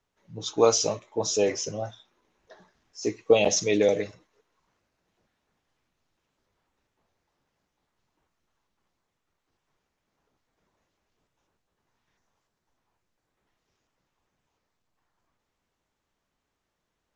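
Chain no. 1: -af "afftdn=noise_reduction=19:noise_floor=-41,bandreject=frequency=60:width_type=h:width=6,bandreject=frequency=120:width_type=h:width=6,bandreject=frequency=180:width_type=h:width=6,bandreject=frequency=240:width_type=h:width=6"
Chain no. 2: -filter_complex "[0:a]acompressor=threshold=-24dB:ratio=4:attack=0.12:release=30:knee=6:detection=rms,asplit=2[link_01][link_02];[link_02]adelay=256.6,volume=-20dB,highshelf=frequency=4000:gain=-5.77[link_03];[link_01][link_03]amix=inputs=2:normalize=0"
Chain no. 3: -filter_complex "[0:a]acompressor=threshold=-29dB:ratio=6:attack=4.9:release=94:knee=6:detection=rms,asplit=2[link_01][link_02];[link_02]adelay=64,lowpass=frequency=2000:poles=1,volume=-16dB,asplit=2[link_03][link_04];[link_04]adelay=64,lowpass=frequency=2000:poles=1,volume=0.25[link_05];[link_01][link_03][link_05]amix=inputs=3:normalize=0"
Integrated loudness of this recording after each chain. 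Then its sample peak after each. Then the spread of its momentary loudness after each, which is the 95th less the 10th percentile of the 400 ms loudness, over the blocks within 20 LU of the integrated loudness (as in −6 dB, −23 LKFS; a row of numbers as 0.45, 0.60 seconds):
−24.5, −31.5, −34.5 LKFS; −7.0, −19.5, −20.5 dBFS; 15, 11, 11 LU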